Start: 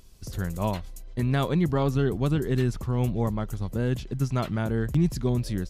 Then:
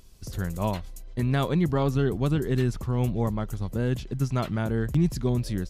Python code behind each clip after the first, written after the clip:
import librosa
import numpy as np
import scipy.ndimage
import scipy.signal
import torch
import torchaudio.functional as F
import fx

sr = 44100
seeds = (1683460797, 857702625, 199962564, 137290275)

y = x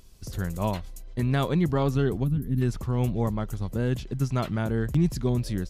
y = fx.spec_box(x, sr, start_s=2.24, length_s=0.38, low_hz=290.0, high_hz=9800.0, gain_db=-17)